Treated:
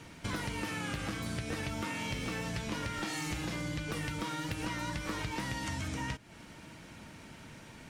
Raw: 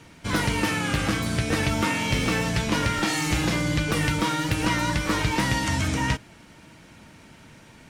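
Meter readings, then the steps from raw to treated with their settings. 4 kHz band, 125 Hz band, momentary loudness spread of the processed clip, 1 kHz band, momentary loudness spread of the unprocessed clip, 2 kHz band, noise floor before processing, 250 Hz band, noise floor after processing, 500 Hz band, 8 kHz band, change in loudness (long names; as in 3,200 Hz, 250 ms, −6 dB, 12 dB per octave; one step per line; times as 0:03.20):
−12.5 dB, −12.5 dB, 14 LU, −12.5 dB, 2 LU, −12.5 dB, −50 dBFS, −12.5 dB, −52 dBFS, −12.5 dB, −12.0 dB, −12.5 dB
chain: downward compressor 6 to 1, threshold −33 dBFS, peak gain reduction 13.5 dB
level −1.5 dB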